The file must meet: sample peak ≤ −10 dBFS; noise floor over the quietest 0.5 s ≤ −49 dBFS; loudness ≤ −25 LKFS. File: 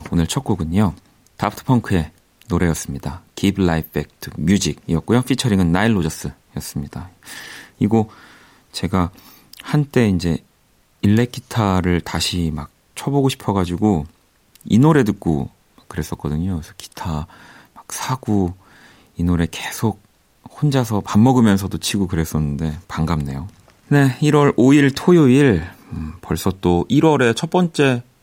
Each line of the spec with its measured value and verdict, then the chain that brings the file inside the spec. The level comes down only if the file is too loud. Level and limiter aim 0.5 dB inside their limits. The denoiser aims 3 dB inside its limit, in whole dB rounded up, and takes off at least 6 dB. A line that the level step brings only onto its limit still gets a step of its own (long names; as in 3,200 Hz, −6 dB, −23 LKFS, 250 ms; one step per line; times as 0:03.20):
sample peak −3.0 dBFS: out of spec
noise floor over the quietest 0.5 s −58 dBFS: in spec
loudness −18.5 LKFS: out of spec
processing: level −7 dB
brickwall limiter −10.5 dBFS